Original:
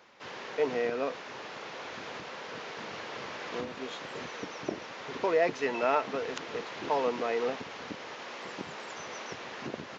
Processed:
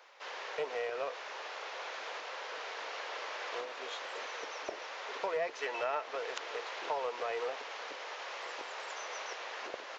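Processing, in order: octave divider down 2 oct, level +1 dB; high-pass 480 Hz 24 dB/octave; compression 2.5:1, threshold -34 dBFS, peak gain reduction 8 dB; loudspeaker Doppler distortion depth 0.1 ms

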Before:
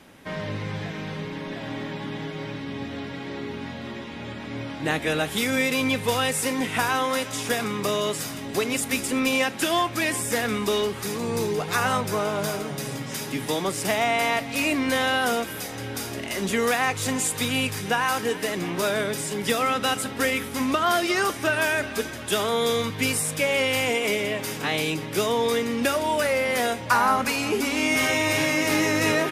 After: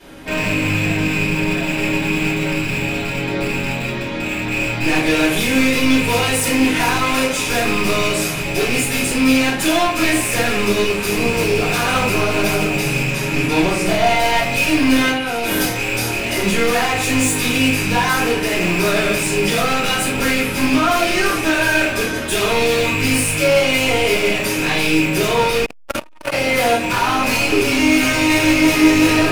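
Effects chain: rattle on loud lows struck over -35 dBFS, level -13 dBFS; 13.09–14.04 s: treble shelf 3.6 kHz -8.5 dB; 15.09–15.67 s: compressor with a negative ratio -31 dBFS, ratio -1; peak limiter -14 dBFS, peak gain reduction 7.5 dB; hard clipper -25.5 dBFS, distortion -8 dB; simulated room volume 65 m³, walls mixed, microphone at 3.1 m; 25.65–26.34 s: transformer saturation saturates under 640 Hz; trim -1.5 dB

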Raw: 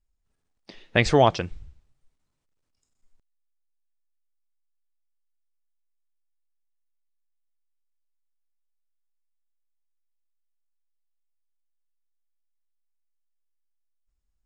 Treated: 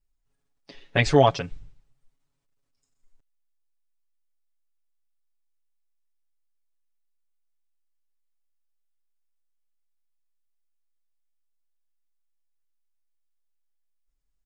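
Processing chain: comb 7.2 ms, depth 95%; trim -3.5 dB

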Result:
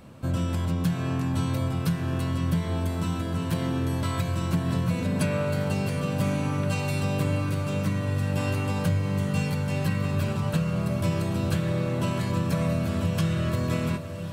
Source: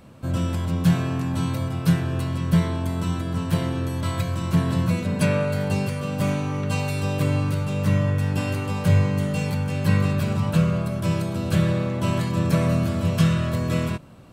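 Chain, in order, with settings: compression, threshold -22 dBFS, peak gain reduction 9 dB; echo that smears into a reverb 1238 ms, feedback 66%, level -11 dB

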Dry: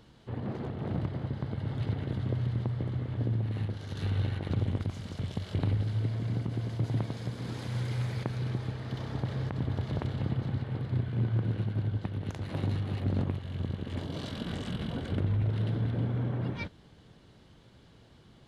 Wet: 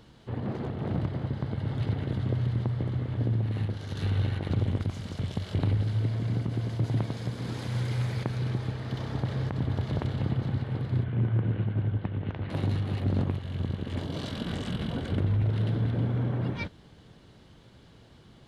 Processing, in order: 11.04–12.50 s: low-pass 3.1 kHz 24 dB/octave; in parallel at -8 dB: overload inside the chain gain 24.5 dB

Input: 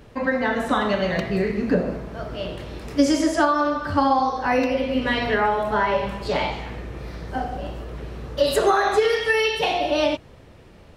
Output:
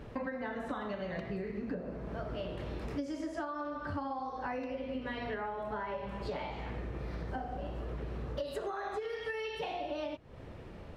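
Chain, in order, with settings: treble shelf 3.6 kHz -11 dB; compression 12:1, threshold -35 dBFS, peak gain reduction 22.5 dB

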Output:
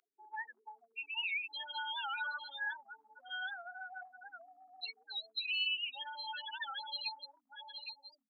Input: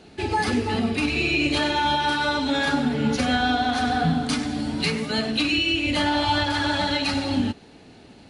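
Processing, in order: steep low-pass 6.1 kHz 36 dB/octave; peaking EQ 2 kHz -5.5 dB 0.47 oct; delay 816 ms -8.5 dB; loudest bins only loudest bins 8; compression, threshold -25 dBFS, peak gain reduction 7.5 dB; high-pass 1.2 kHz 24 dB/octave; warped record 78 rpm, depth 160 cents; trim -4 dB

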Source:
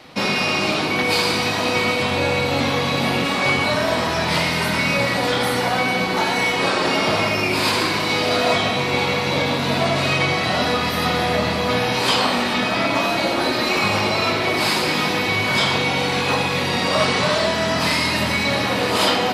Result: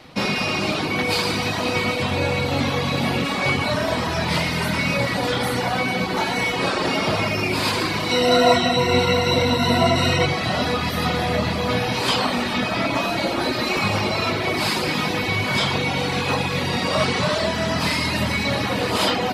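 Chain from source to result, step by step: bass shelf 160 Hz +8 dB; reverb removal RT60 0.51 s; 8.11–10.26 s: rippled EQ curve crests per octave 2, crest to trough 17 dB; trim -2 dB

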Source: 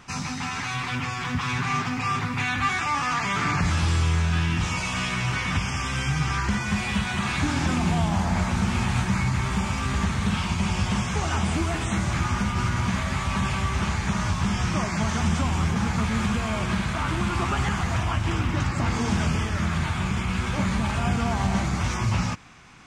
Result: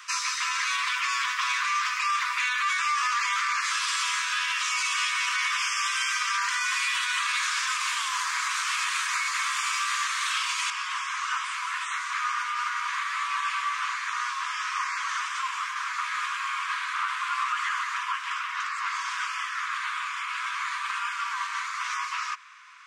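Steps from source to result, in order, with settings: treble shelf 3.1 kHz +3 dB, from 10.70 s -10.5 dB; Chebyshev high-pass 1 kHz, order 8; peak limiter -23.5 dBFS, peak gain reduction 10 dB; trim +5.5 dB

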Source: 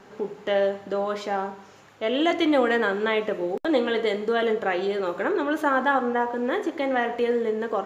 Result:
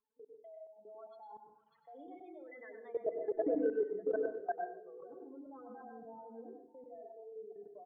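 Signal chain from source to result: spectral contrast enhancement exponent 3.4; Doppler pass-by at 3.47 s, 24 m/s, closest 1.9 m; rippled Chebyshev low-pass 4.3 kHz, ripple 6 dB; comb 4.5 ms, depth 82%; delay 595 ms -18.5 dB; compression 5:1, threshold -39 dBFS, peak gain reduction 15.5 dB; hum notches 50/100/150/200/250/300/350/400/450/500 Hz; spectral noise reduction 18 dB; low-pass sweep 3.3 kHz -> 650 Hz, 3.21–5.31 s; level held to a coarse grid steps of 21 dB; reverberation RT60 0.50 s, pre-delay 92 ms, DRR 3.5 dB; trim +10.5 dB

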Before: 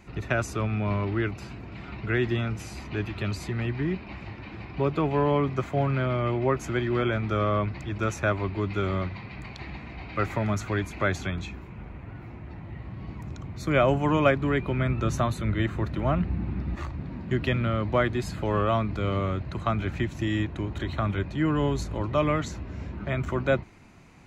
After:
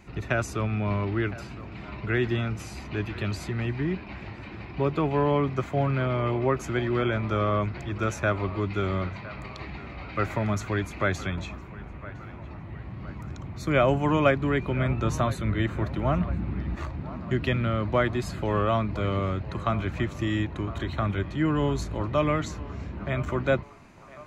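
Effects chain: band-passed feedback delay 1010 ms, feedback 63%, band-pass 1 kHz, level -15 dB

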